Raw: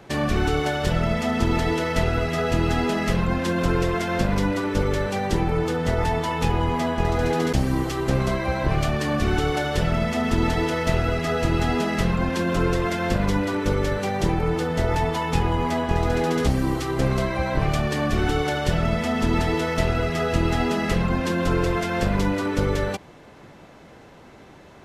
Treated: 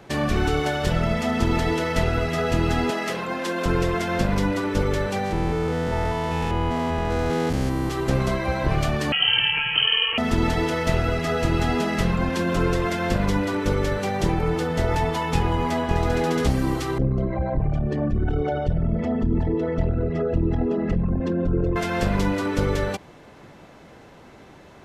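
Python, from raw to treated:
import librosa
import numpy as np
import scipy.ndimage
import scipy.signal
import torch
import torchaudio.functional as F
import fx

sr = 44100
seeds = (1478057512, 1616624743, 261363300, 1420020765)

y = fx.highpass(x, sr, hz=330.0, slope=12, at=(2.9, 3.66))
y = fx.spec_steps(y, sr, hold_ms=200, at=(5.24, 7.9), fade=0.02)
y = fx.freq_invert(y, sr, carrier_hz=3100, at=(9.12, 10.18))
y = fx.envelope_sharpen(y, sr, power=2.0, at=(16.98, 21.76))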